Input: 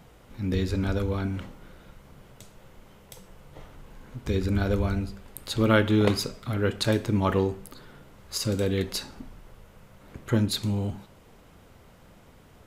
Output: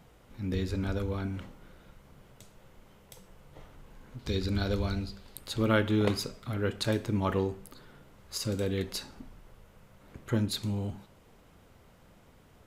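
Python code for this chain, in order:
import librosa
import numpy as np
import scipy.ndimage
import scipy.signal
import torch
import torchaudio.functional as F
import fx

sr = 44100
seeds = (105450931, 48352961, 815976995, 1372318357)

y = fx.peak_eq(x, sr, hz=4300.0, db=12.0, octaves=0.72, at=(4.19, 5.39))
y = y * librosa.db_to_amplitude(-5.0)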